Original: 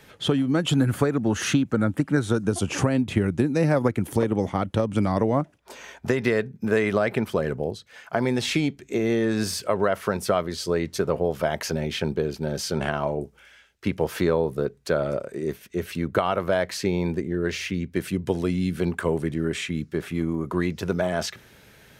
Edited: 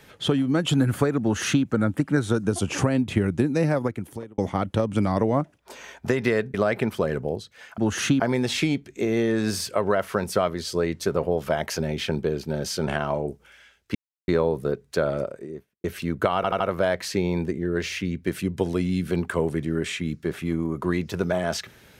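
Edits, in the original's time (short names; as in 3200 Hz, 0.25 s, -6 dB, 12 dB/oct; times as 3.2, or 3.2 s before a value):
1.22–1.64 copy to 8.13
3.55–4.38 fade out
6.54–6.89 cut
13.88–14.21 mute
15.03–15.77 studio fade out
16.29 stutter 0.08 s, 4 plays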